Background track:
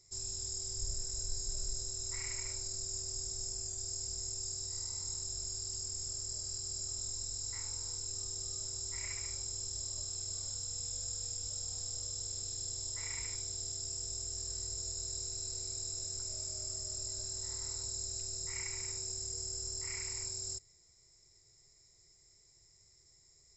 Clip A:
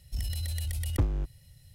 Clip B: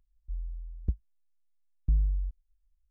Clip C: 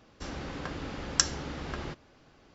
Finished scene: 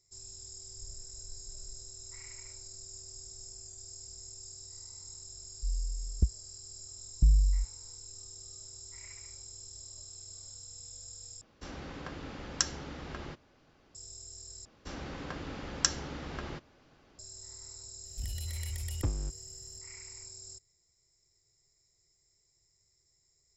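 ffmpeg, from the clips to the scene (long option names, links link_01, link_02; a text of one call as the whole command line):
ffmpeg -i bed.wav -i cue0.wav -i cue1.wav -i cue2.wav -filter_complex "[3:a]asplit=2[link_01][link_02];[0:a]volume=-7.5dB[link_03];[2:a]dynaudnorm=framelen=170:gausssize=3:maxgain=16dB[link_04];[link_03]asplit=3[link_05][link_06][link_07];[link_05]atrim=end=11.414[link_08];[link_01]atrim=end=2.54,asetpts=PTS-STARTPTS,volume=-5dB[link_09];[link_06]atrim=start=13.946:end=14.654[link_10];[link_02]atrim=end=2.54,asetpts=PTS-STARTPTS,volume=-3dB[link_11];[link_07]atrim=start=17.186[link_12];[link_04]atrim=end=2.9,asetpts=PTS-STARTPTS,volume=-12dB,afade=type=in:duration=0.004:curve=hsin,afade=type=out:start_time=2.896:duration=0.004:curve=hsin,adelay=5340[link_13];[1:a]atrim=end=1.74,asetpts=PTS-STARTPTS,volume=-5.5dB,afade=type=in:duration=0.004:curve=hsin,afade=type=out:start_time=1.736:duration=0.004:curve=hsin,adelay=18050[link_14];[link_08][link_09]acrossfade=duration=0.004:curve1=hsin:curve2=hsin[link_15];[link_15][link_10]acrossfade=duration=0.004:curve1=hsin:curve2=hsin[link_16];[link_16][link_11]acrossfade=duration=0.004:curve1=hsin:curve2=hsin[link_17];[link_17][link_12]acrossfade=duration=0.004:curve1=hsin:curve2=hsin[link_18];[link_18][link_13][link_14]amix=inputs=3:normalize=0" out.wav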